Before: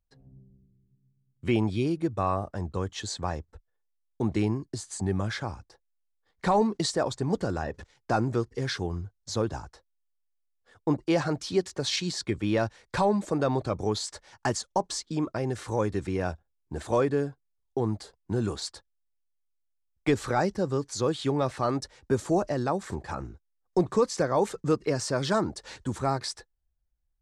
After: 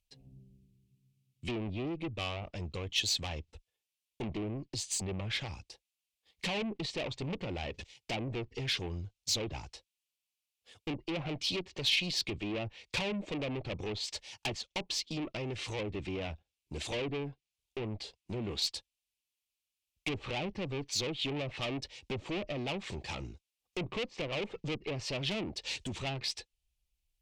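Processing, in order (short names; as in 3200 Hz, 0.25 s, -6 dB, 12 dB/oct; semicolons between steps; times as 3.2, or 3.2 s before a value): treble ducked by the level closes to 690 Hz, closed at -21 dBFS; tube stage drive 31 dB, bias 0.3; resonant high shelf 2000 Hz +9 dB, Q 3; gain -2 dB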